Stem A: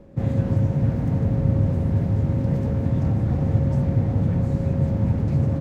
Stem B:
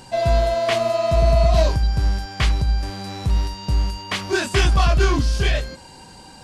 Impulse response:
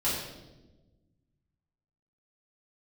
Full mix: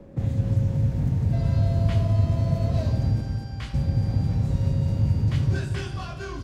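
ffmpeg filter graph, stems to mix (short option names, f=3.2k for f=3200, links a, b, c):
-filter_complex "[0:a]acrossover=split=120|3000[a][b][c];[b]acompressor=threshold=-34dB:ratio=6[d];[a][d][c]amix=inputs=3:normalize=0,volume=1.5dB,asplit=3[e][f][g];[e]atrim=end=3.21,asetpts=PTS-STARTPTS,afade=t=out:st=3.206:d=0.004:c=hsin[h];[f]atrim=start=3.21:end=3.74,asetpts=PTS-STARTPTS,volume=0[i];[g]atrim=start=3.74,asetpts=PTS-STARTPTS,afade=t=in:d=0.004:c=hsin[j];[h][i][j]concat=n=3:v=0:a=1,asplit=2[k][l];[l]volume=-6.5dB[m];[1:a]equalizer=f=1.5k:w=6.4:g=4,adelay=1200,volume=-19.5dB,asplit=2[n][o];[o]volume=-11dB[p];[2:a]atrim=start_sample=2205[q];[p][q]afir=irnorm=-1:irlink=0[r];[m]aecho=0:1:230|460|690|920|1150|1380|1610|1840:1|0.56|0.314|0.176|0.0983|0.0551|0.0308|0.0173[s];[k][n][r][s]amix=inputs=4:normalize=0"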